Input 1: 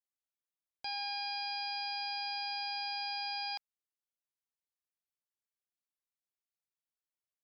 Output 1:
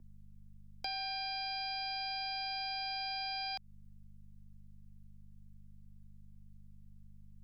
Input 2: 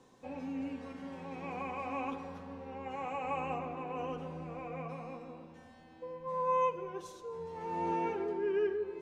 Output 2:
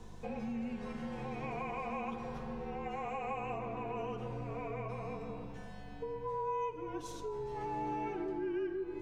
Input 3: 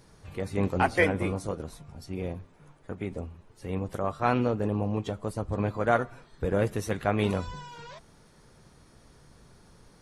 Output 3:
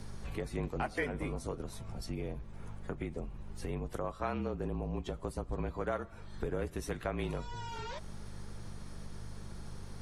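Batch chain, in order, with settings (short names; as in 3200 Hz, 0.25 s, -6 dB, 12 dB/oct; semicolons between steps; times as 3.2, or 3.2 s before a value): hum 50 Hz, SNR 17 dB; frequency shift -39 Hz; compressor 3:1, threshold -44 dBFS; gain +6 dB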